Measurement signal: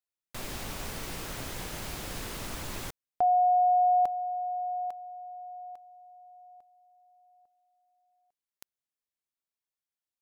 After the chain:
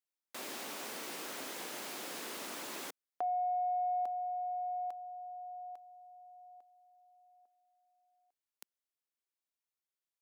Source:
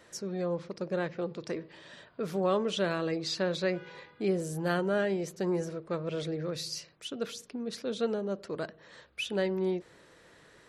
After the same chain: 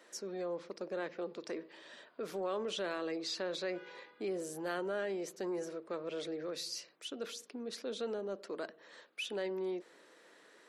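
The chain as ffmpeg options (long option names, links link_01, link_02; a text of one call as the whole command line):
ffmpeg -i in.wav -af "highpass=frequency=250:width=0.5412,highpass=frequency=250:width=1.3066,acompressor=threshold=-32dB:ratio=3:attack=2.7:release=29:knee=6:detection=peak,volume=-3dB" out.wav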